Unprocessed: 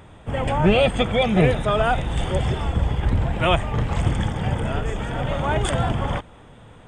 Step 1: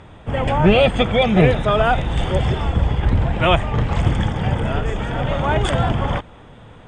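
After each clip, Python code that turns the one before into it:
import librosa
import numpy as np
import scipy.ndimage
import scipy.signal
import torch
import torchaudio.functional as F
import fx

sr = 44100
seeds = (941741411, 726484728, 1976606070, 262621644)

y = scipy.signal.sosfilt(scipy.signal.butter(2, 6200.0, 'lowpass', fs=sr, output='sos'), x)
y = F.gain(torch.from_numpy(y), 3.5).numpy()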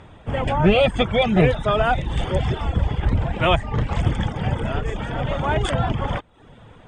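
y = fx.dereverb_blind(x, sr, rt60_s=0.54)
y = F.gain(torch.from_numpy(y), -2.0).numpy()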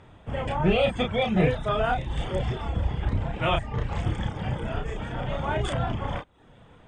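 y = fx.doubler(x, sr, ms=32.0, db=-4)
y = F.gain(torch.from_numpy(y), -7.5).numpy()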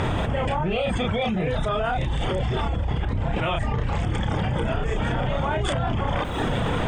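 y = fx.env_flatten(x, sr, amount_pct=100)
y = F.gain(torch.from_numpy(y), -6.0).numpy()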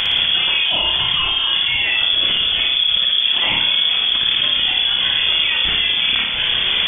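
y = fx.freq_invert(x, sr, carrier_hz=3400)
y = fx.room_flutter(y, sr, wall_m=9.9, rt60_s=0.78)
y = F.gain(torch.from_numpy(y), 4.0).numpy()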